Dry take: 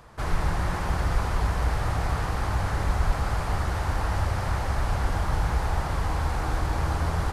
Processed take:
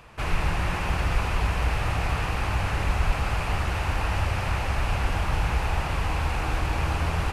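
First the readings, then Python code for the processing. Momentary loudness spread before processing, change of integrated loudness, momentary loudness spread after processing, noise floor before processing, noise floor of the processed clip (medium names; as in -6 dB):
1 LU, +0.5 dB, 1 LU, -30 dBFS, -29 dBFS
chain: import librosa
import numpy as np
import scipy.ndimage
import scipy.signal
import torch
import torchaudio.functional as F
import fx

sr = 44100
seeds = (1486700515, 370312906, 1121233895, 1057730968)

y = fx.peak_eq(x, sr, hz=2600.0, db=13.0, octaves=0.48)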